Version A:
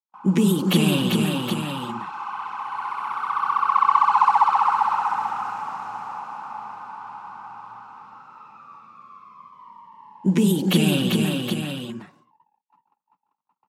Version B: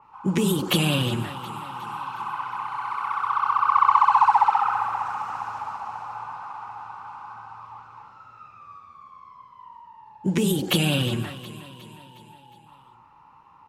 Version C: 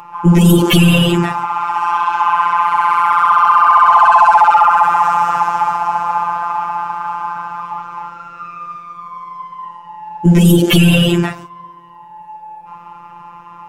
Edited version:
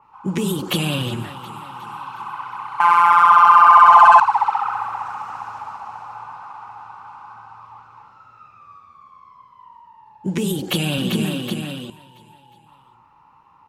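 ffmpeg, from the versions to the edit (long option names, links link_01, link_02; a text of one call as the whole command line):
ffmpeg -i take0.wav -i take1.wav -i take2.wav -filter_complex "[1:a]asplit=3[link_01][link_02][link_03];[link_01]atrim=end=2.802[link_04];[2:a]atrim=start=2.798:end=4.202[link_05];[link_02]atrim=start=4.198:end=10.982[link_06];[0:a]atrim=start=10.978:end=11.902[link_07];[link_03]atrim=start=11.898[link_08];[link_04][link_05]acrossfade=duration=0.004:curve1=hsin:curve2=hsin[link_09];[link_09][link_06]acrossfade=duration=0.004:curve1=hsin:curve2=hsin[link_10];[link_10][link_07]acrossfade=duration=0.004:curve1=hsin:curve2=hsin[link_11];[link_11][link_08]acrossfade=duration=0.004:curve1=hsin:curve2=hsin" out.wav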